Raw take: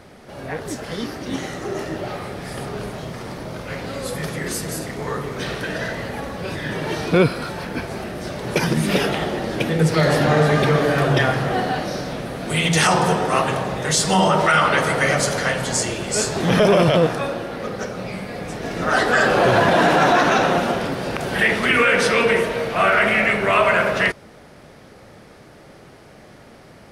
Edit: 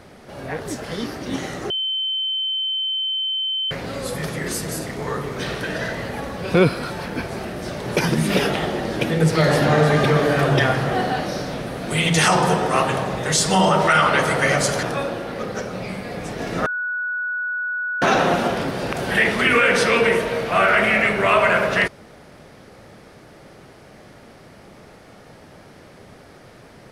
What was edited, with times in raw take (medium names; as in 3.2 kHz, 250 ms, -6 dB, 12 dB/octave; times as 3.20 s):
1.70–3.71 s: bleep 3.08 kHz -20.5 dBFS
6.54–7.13 s: delete
15.42–17.07 s: delete
18.90–20.26 s: bleep 1.47 kHz -22 dBFS